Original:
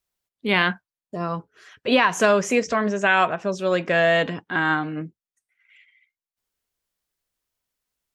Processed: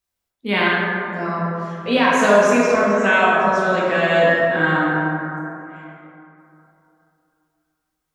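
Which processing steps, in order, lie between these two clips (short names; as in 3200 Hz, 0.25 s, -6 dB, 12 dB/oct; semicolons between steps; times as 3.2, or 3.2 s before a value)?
plate-style reverb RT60 3 s, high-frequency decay 0.35×, DRR -6.5 dB; gain -3 dB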